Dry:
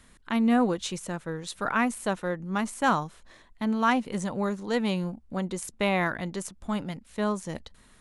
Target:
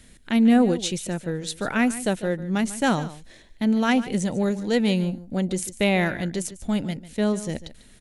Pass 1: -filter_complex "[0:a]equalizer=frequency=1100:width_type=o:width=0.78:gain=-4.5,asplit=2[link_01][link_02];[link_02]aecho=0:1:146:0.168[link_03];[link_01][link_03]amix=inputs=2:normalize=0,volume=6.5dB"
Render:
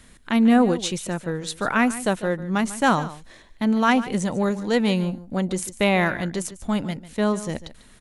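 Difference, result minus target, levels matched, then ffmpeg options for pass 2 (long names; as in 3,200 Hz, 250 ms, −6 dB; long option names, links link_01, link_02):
1,000 Hz band +4.0 dB
-filter_complex "[0:a]equalizer=frequency=1100:width_type=o:width=0.78:gain=-14.5,asplit=2[link_01][link_02];[link_02]aecho=0:1:146:0.168[link_03];[link_01][link_03]amix=inputs=2:normalize=0,volume=6.5dB"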